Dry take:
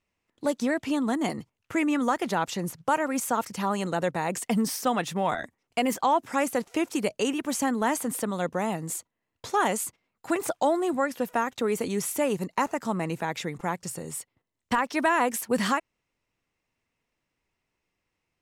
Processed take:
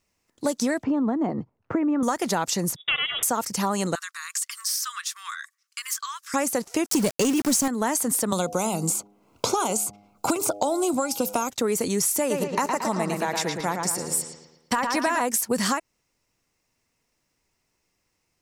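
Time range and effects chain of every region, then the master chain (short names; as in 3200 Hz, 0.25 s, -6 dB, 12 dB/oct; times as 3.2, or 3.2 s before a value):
0.83–2.03 LPF 1000 Hz + three-band squash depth 70%
2.76–3.23 minimum comb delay 1.3 ms + HPF 60 Hz + inverted band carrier 3600 Hz
3.95–6.34 rippled Chebyshev high-pass 1100 Hz, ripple 3 dB + compressor 2:1, threshold -37 dBFS
6.86–7.68 bell 160 Hz +6.5 dB 1.6 oct + sample leveller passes 2 + sample gate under -30 dBFS
8.32–11.5 Butterworth band-stop 1800 Hz, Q 2.6 + de-hum 102.1 Hz, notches 8 + three-band squash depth 100%
12.19–15.21 low shelf 120 Hz -10 dB + notch 6600 Hz, Q 23 + analogue delay 0.113 s, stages 4096, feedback 48%, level -5 dB
whole clip: resonant high shelf 4100 Hz +6.5 dB, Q 1.5; compressor, threshold -25 dBFS; gain +5 dB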